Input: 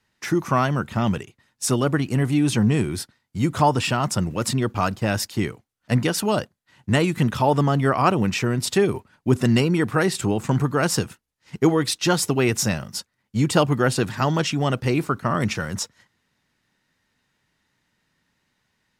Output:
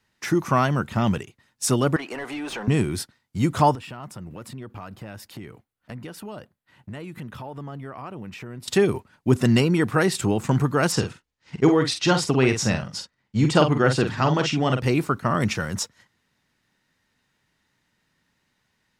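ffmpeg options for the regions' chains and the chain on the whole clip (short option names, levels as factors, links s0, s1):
-filter_complex "[0:a]asettb=1/sr,asplit=3[s0][s1][s2];[s0]atrim=end=1.964[s3];[s1]atrim=start=1.96:end=2.68,asetpts=PTS-STARTPTS,afade=t=in:d=0.004:c=qsin,afade=t=out:st=0.716:d=0.004:c=qsin,highpass=550,asplit=2[s4][s5];[s5]highpass=f=720:p=1,volume=8.91,asoftclip=type=tanh:threshold=0.188[s6];[s4][s6]amix=inputs=2:normalize=0,lowpass=f=1000:p=1,volume=0.501,acompressor=threshold=0.0355:ratio=3:attack=3.2:release=140:knee=1:detection=peak[s7];[s2]atrim=start=2.676[s8];[s3][s7]acrossfade=d=0.004:c1=hsin:c2=qsin[s9];[s9][s8]acrossfade=d=0.004:c1=qsin:c2=hsin,asettb=1/sr,asplit=3[s10][s11][s12];[s10]atrim=end=3.754[s13];[s11]atrim=start=3.75:end=8.68,asetpts=PTS-STARTPTS,afade=t=in:d=0.004:c=qsin,afade=t=out:st=4.926:d=0.004:c=qsin,acompressor=threshold=0.0158:ratio=4:attack=3.2:release=140:knee=1:detection=peak,equalizer=f=6300:t=o:w=1.3:g=-8.5[s14];[s12]atrim=start=8.676[s15];[s13][s14]acrossfade=d=0.004:c1=hsin:c2=qsin[s16];[s16][s15]acrossfade=d=0.004:c1=qsin:c2=hsin,asettb=1/sr,asplit=3[s17][s18][s19];[s17]atrim=end=10.924[s20];[s18]atrim=start=10.92:end=14.82,asetpts=PTS-STARTPTS,afade=t=in:d=0.004:c=qsin,afade=t=out:st=3.896:d=0.004:c=qsin,lowpass=6000,asplit=2[s21][s22];[s22]adelay=46,volume=0.447[s23];[s21][s23]amix=inputs=2:normalize=0,atrim=end_sample=171990[s24];[s19]atrim=start=14.816[s25];[s20][s24]acrossfade=d=0.004:c1=hsin:c2=qsin[s26];[s26][s25]acrossfade=d=0.004:c1=qsin:c2=hsin"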